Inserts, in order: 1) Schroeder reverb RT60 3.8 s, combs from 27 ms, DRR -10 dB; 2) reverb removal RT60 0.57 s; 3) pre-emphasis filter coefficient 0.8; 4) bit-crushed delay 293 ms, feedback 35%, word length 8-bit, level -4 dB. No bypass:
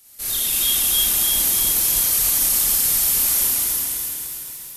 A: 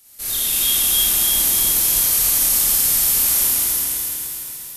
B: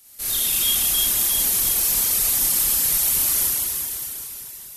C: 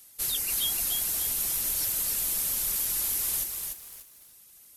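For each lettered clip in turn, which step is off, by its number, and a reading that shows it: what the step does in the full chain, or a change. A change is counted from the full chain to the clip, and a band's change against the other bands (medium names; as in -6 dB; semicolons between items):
2, loudness change +1.5 LU; 4, momentary loudness spread change +2 LU; 1, momentary loudness spread change -2 LU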